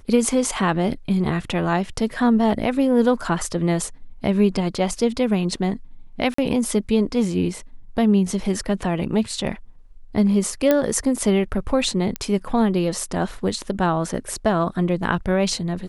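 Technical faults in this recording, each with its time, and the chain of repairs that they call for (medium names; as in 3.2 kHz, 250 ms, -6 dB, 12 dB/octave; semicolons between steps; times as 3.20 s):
6.34–6.38 s: dropout 44 ms
10.71 s: pop -5 dBFS
12.16 s: pop -9 dBFS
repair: de-click; interpolate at 6.34 s, 44 ms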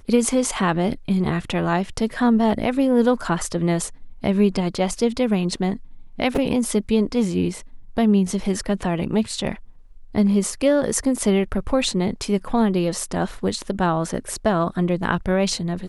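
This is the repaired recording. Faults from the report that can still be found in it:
nothing left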